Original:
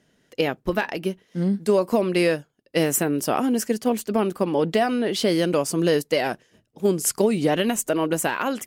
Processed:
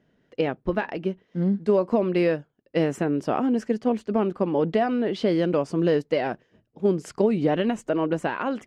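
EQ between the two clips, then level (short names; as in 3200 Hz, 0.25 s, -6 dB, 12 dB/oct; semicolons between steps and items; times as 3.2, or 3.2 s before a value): tape spacing loss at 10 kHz 27 dB; 0.0 dB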